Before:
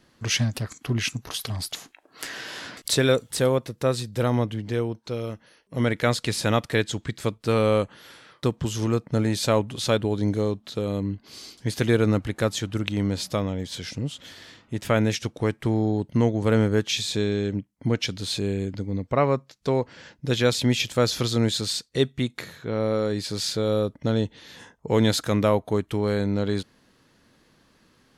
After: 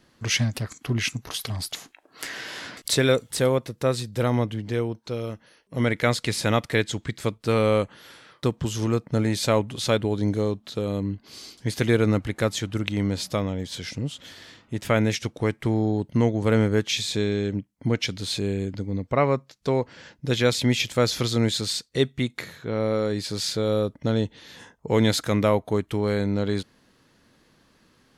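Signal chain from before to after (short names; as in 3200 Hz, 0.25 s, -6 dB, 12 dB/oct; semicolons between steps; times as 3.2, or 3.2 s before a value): dynamic EQ 2100 Hz, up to +5 dB, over -49 dBFS, Q 7.1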